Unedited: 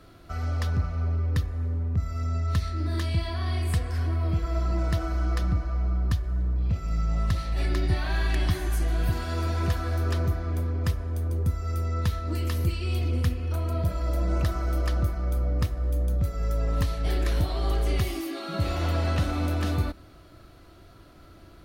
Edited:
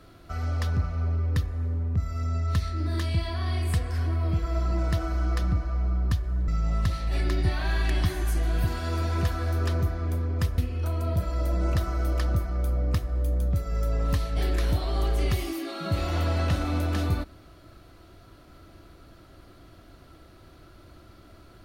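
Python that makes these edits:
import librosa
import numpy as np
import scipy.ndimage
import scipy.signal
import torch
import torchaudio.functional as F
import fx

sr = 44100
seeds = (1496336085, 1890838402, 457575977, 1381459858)

y = fx.edit(x, sr, fx.cut(start_s=6.48, length_s=0.45),
    fx.cut(start_s=11.03, length_s=2.23), tone=tone)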